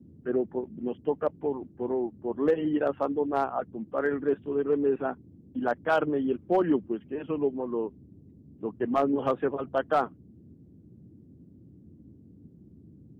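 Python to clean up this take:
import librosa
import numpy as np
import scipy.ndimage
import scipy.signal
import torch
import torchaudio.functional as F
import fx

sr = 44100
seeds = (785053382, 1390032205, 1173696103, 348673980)

y = fx.fix_declip(x, sr, threshold_db=-15.5)
y = fx.noise_reduce(y, sr, print_start_s=10.54, print_end_s=11.04, reduce_db=19.0)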